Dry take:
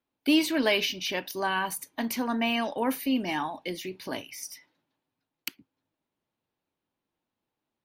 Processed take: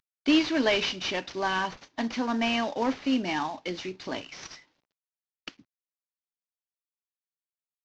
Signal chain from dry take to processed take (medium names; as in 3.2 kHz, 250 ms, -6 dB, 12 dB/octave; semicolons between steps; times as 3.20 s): CVSD coder 32 kbps; trim +1 dB